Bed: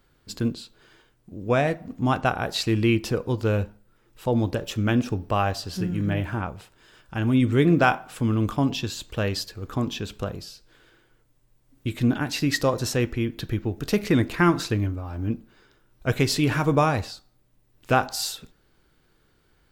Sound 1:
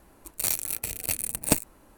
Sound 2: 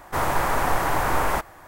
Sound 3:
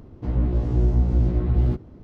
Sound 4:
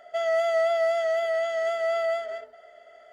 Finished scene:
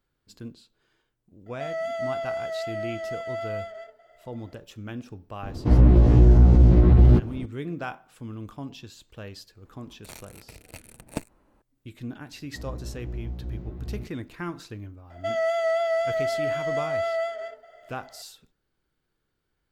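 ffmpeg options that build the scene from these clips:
ffmpeg -i bed.wav -i cue0.wav -i cue1.wav -i cue2.wav -i cue3.wav -filter_complex "[4:a]asplit=2[link_01][link_02];[3:a]asplit=2[link_03][link_04];[0:a]volume=-14.5dB[link_05];[link_03]alimiter=level_in=14.5dB:limit=-1dB:release=50:level=0:latency=1[link_06];[1:a]aemphasis=mode=reproduction:type=75fm[link_07];[link_01]atrim=end=3.12,asetpts=PTS-STARTPTS,volume=-6.5dB,afade=type=in:duration=0.004:curve=hsin,afade=type=out:start_time=3.116:duration=0.004:curve=hsin,adelay=1460[link_08];[link_06]atrim=end=2.03,asetpts=PTS-STARTPTS,volume=-6dB,afade=type=in:duration=0.004:curve=hsin,afade=type=out:start_time=2.026:duration=0.004:curve=hsin,adelay=5430[link_09];[link_07]atrim=end=1.97,asetpts=PTS-STARTPTS,volume=-7.5dB,afade=type=in:duration=0.004:curve=hsin,afade=type=out:start_time=1.966:duration=0.004:curve=hsin,adelay=9650[link_10];[link_04]atrim=end=2.03,asetpts=PTS-STARTPTS,volume=-15dB,afade=type=in:duration=0.004:curve=hsin,afade=type=out:start_time=2.026:duration=0.004:curve=hsin,adelay=12310[link_11];[link_02]atrim=end=3.12,asetpts=PTS-STARTPTS,volume=-1dB,afade=type=in:duration=0.004:curve=hsin,afade=type=out:start_time=3.116:duration=0.004:curve=hsin,adelay=15100[link_12];[link_05][link_08][link_09][link_10][link_11][link_12]amix=inputs=6:normalize=0" out.wav

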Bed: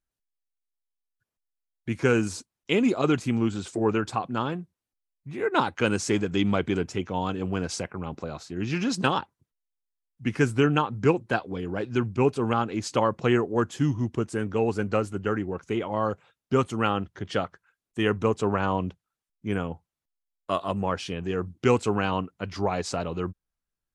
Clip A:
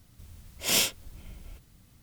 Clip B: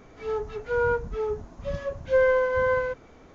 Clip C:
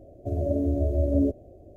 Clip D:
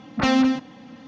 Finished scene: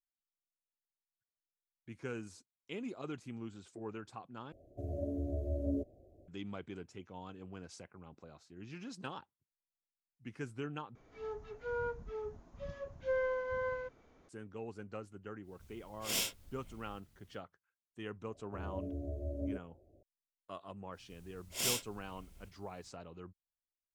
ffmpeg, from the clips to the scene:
ffmpeg -i bed.wav -i cue0.wav -i cue1.wav -i cue2.wav -filter_complex "[3:a]asplit=2[link_01][link_02];[1:a]asplit=2[link_03][link_04];[0:a]volume=-20dB[link_05];[link_04]equalizer=frequency=8600:width_type=o:width=1.3:gain=3.5[link_06];[link_05]asplit=3[link_07][link_08][link_09];[link_07]atrim=end=4.524[link_10];[link_01]atrim=end=1.76,asetpts=PTS-STARTPTS,volume=-12.5dB[link_11];[link_08]atrim=start=6.276:end=10.954[link_12];[2:a]atrim=end=3.34,asetpts=PTS-STARTPTS,volume=-13.5dB[link_13];[link_09]atrim=start=14.286[link_14];[link_03]atrim=end=2.02,asetpts=PTS-STARTPTS,volume=-10.5dB,afade=type=in:duration=0.1,afade=type=out:start_time=1.92:duration=0.1,adelay=15410[link_15];[link_02]atrim=end=1.76,asetpts=PTS-STARTPTS,volume=-16dB,afade=type=in:duration=0.004:curve=hsin,afade=type=out:start_time=1.756:duration=0.004:curve=hsin,adelay=18270[link_16];[link_06]atrim=end=2.02,asetpts=PTS-STARTPTS,volume=-11.5dB,afade=type=in:duration=0.05,afade=type=out:start_time=1.97:duration=0.05,adelay=20910[link_17];[link_10][link_11]acrossfade=duration=0.004:curve1=hsin:curve2=hsin[link_18];[link_18][link_12]acrossfade=duration=0.004:curve1=hsin:curve2=hsin[link_19];[link_19][link_13]acrossfade=duration=0.004:curve1=hsin:curve2=hsin[link_20];[link_20][link_14]acrossfade=duration=0.004:curve1=hsin:curve2=hsin[link_21];[link_21][link_15][link_16][link_17]amix=inputs=4:normalize=0" out.wav

